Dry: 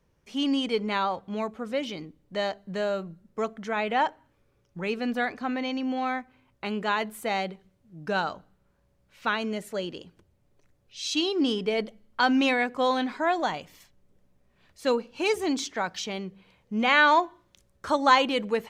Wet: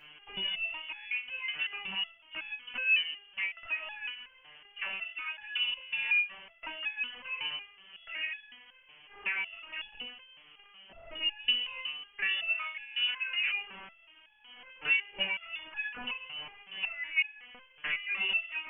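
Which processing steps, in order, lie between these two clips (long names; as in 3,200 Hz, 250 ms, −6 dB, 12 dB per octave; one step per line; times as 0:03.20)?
compressor on every frequency bin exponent 0.6
brickwall limiter −13.5 dBFS, peak gain reduction 8.5 dB
treble cut that deepens with the level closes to 1,300 Hz, closed at −21.5 dBFS
voice inversion scrambler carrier 3,200 Hz
step-sequenced resonator 5.4 Hz 150–850 Hz
level +6 dB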